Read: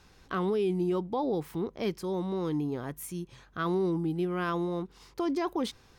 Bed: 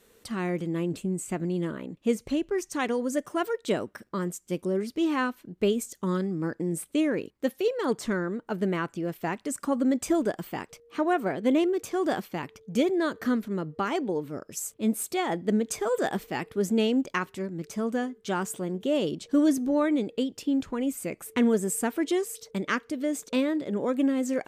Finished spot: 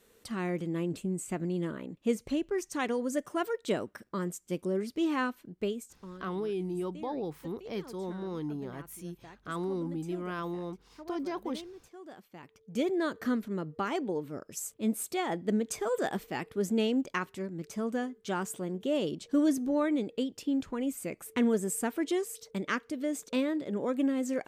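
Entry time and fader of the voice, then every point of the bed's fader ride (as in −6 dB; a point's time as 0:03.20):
5.90 s, −5.5 dB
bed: 0:05.46 −3.5 dB
0:06.26 −21.5 dB
0:12.14 −21.5 dB
0:12.90 −4 dB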